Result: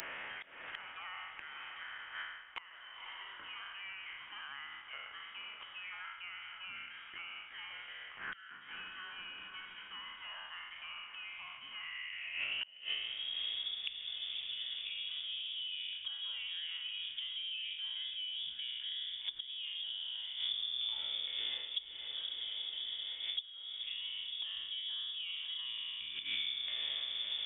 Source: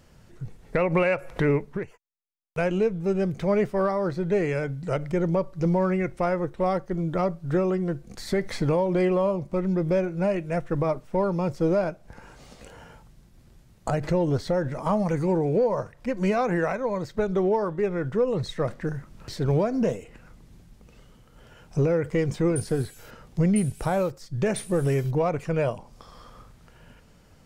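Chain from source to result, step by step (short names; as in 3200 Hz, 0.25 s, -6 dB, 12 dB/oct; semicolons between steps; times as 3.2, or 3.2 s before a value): spectral trails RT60 0.97 s; high shelf 2000 Hz -10 dB; reverse; compressor 16:1, threshold -35 dBFS, peak gain reduction 18.5 dB; reverse; flipped gate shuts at -35 dBFS, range -28 dB; diffused feedback echo 0.523 s, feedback 52%, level -11.5 dB; high-pass sweep 2400 Hz -> 63 Hz, 11.74–14.17; inverted band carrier 3500 Hz; three-band squash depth 100%; gain +16 dB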